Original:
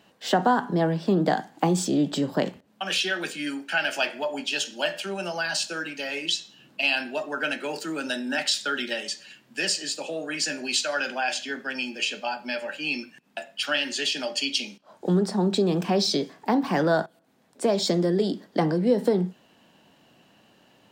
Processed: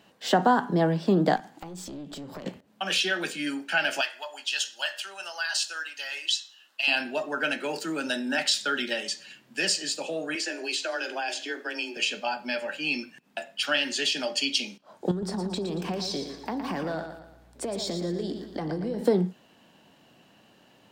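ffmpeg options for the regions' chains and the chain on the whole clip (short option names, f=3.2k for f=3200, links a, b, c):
-filter_complex "[0:a]asettb=1/sr,asplit=3[a][b][c];[a]atrim=end=1.364[d];[b]atrim=start=1.36:end=2.46,asetpts=PTS-STARTPTS,afade=t=in:d=0.004:c=qsin,afade=t=out:st=1.096:d=0.004:c=qsin,acompressor=threshold=-34dB:ratio=16:attack=3.2:release=140:knee=1:detection=peak,aeval=exprs='clip(val(0),-1,0.01)':c=same[e];[c]atrim=start=2.456[f];[d][e]acrossfade=d=0.004:c1=hsin:c2=qsin[g];[g][f]acrossfade=d=0.004:c1=qsin:c2=hsin,asettb=1/sr,asplit=3[h][i][j];[h]atrim=end=4.014[k];[i]atrim=start=4.01:end=6.88,asetpts=PTS-STARTPTS,afade=t=in:d=0.004:c=qsin,afade=t=out:st=2.866:d=0.004:c=qsin,highpass=1.2k,bandreject=f=2.3k:w=5.8[l];[j]atrim=start=6.876[m];[k][l]acrossfade=d=0.004:c1=hsin:c2=qsin[n];[n][m]acrossfade=d=0.004:c1=qsin:c2=hsin,asettb=1/sr,asplit=3[o][p][q];[o]atrim=end=10.354[r];[p]atrim=start=10.35:end=11.97,asetpts=PTS-STARTPTS,afade=t=in:d=0.004:c=qsin,afade=t=out:st=1.616:d=0.004:c=qsin,highpass=f=330:t=q:w=3.4,acrossover=split=520|3400[s][t][u];[s]acompressor=threshold=-41dB:ratio=4[v];[t]acompressor=threshold=-31dB:ratio=4[w];[u]acompressor=threshold=-34dB:ratio=4[x];[v][w][x]amix=inputs=3:normalize=0,afreqshift=18[y];[q]atrim=start=11.966[z];[r][y]acrossfade=d=0.004:c1=hsin:c2=qsin[aa];[aa][z]acrossfade=d=0.004:c1=qsin:c2=hsin,asettb=1/sr,asplit=3[ab][ac][ad];[ab]atrim=end=15.114[ae];[ac]atrim=start=15.11:end=19.02,asetpts=PTS-STARTPTS,afade=t=in:d=0.004:c=qsin,afade=t=out:st=3.906:d=0.004:c=qsin,acompressor=threshold=-29dB:ratio=5:attack=3.2:release=140:knee=1:detection=peak,aeval=exprs='val(0)+0.00126*(sin(2*PI*60*n/s)+sin(2*PI*2*60*n/s)/2+sin(2*PI*3*60*n/s)/3+sin(2*PI*4*60*n/s)/4+sin(2*PI*5*60*n/s)/5)':c=same,aecho=1:1:115|230|345|460|575:0.398|0.171|0.0736|0.0317|0.0136,atrim=end_sample=172431[af];[ad]atrim=start=19.016[ag];[ae][af]acrossfade=d=0.004:c1=hsin:c2=qsin[ah];[ah][ag]acrossfade=d=0.004:c1=qsin:c2=hsin"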